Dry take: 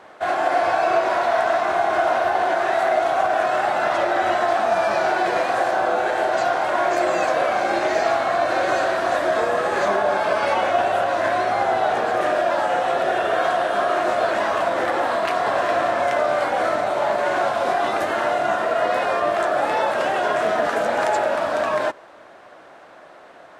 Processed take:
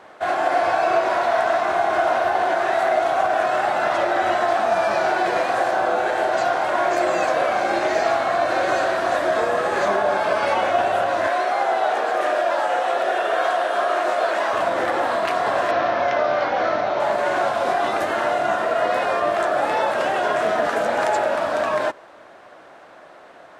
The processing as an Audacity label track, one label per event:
11.270000	14.530000	high-pass filter 360 Hz
15.710000	17.000000	Butterworth low-pass 6,100 Hz 48 dB per octave

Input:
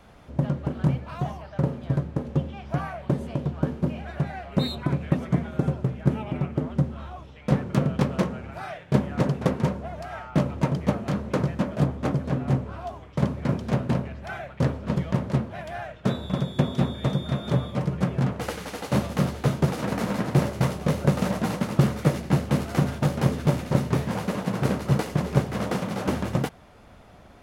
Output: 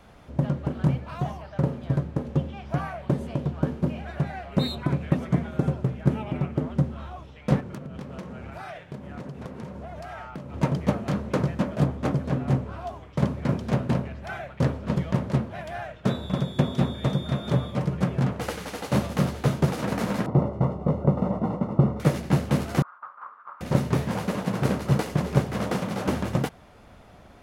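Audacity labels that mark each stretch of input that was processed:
7.600000	10.540000	downward compressor 10 to 1, threshold −33 dBFS
20.260000	22.000000	Savitzky-Golay smoothing over 65 samples
22.820000	23.610000	flat-topped band-pass 1,200 Hz, Q 3.5

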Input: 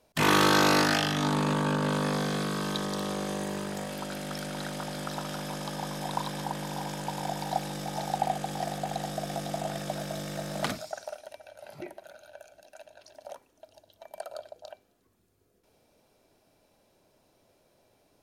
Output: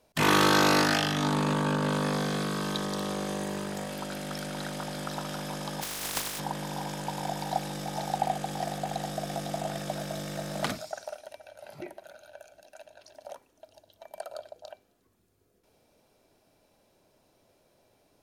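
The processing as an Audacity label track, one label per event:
5.810000	6.380000	compressing power law on the bin magnitudes exponent 0.2

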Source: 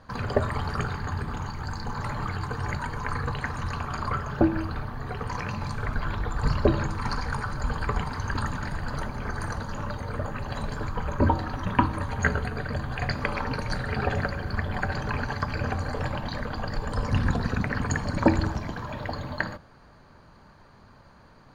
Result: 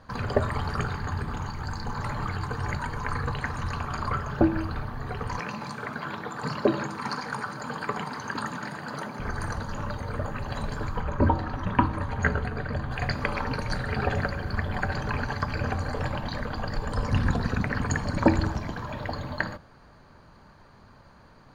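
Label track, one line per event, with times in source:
5.390000	9.200000	high-pass filter 160 Hz 24 dB per octave
11.010000	12.910000	high-shelf EQ 4,600 Hz −9 dB

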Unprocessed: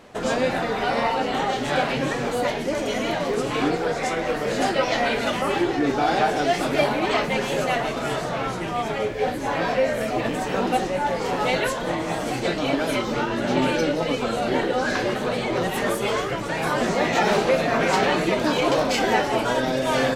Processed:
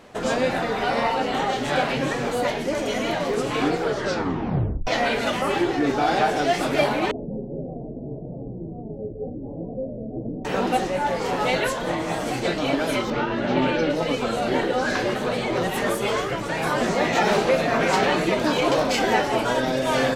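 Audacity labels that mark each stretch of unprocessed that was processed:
3.820000	3.820000	tape stop 1.05 s
7.110000	10.450000	Gaussian smoothing sigma 20 samples
13.100000	13.900000	low-pass filter 3,900 Hz

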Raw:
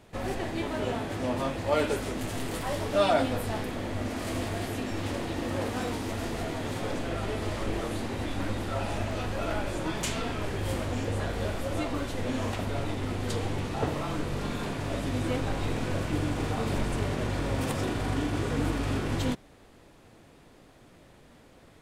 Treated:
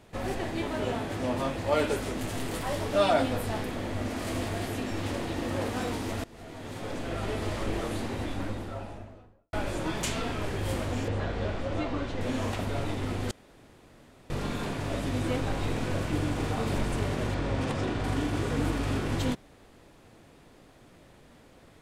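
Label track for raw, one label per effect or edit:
6.240000	7.290000	fade in, from −22 dB
8.000000	9.530000	fade out and dull
11.080000	12.210000	high-frequency loss of the air 110 metres
13.310000	14.300000	fill with room tone
17.340000	18.040000	high-frequency loss of the air 69 metres

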